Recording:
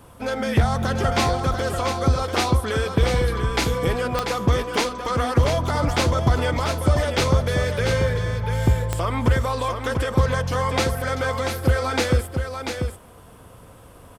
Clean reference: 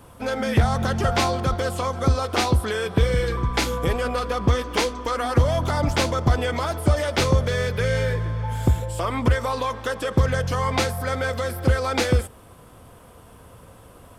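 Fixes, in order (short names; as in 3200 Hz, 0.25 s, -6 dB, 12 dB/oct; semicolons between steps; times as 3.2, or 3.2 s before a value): de-click; inverse comb 0.69 s -6.5 dB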